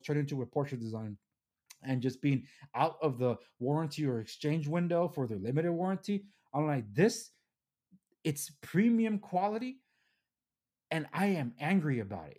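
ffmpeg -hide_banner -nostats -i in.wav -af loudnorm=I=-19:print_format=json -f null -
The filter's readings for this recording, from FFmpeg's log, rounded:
"input_i" : "-33.7",
"input_tp" : "-13.7",
"input_lra" : "2.6",
"input_thresh" : "-44.0",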